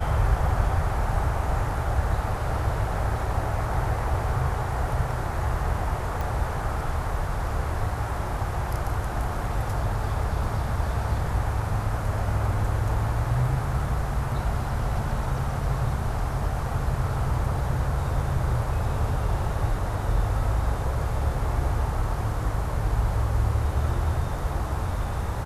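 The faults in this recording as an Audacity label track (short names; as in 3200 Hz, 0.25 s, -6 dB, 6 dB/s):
6.210000	6.210000	pop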